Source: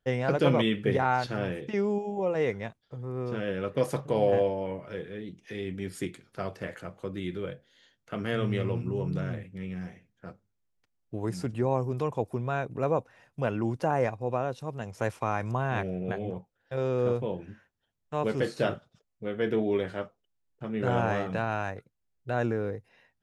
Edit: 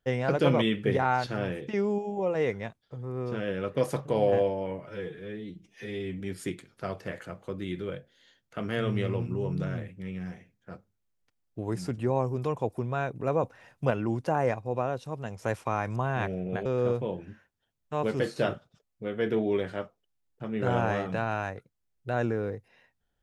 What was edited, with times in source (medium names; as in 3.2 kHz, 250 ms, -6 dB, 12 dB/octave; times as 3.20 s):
4.87–5.76 s: stretch 1.5×
12.99–13.46 s: gain +4 dB
16.21–16.86 s: delete